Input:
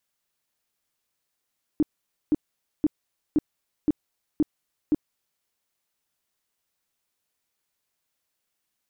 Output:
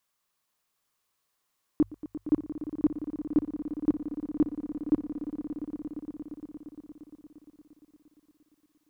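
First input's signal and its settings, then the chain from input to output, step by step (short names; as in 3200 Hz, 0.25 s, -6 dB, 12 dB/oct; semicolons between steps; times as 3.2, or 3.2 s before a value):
tone bursts 303 Hz, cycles 8, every 0.52 s, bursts 7, -16 dBFS
bell 1100 Hz +9.5 dB 0.32 oct; notches 50/100 Hz; on a send: swelling echo 0.116 s, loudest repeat 5, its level -13.5 dB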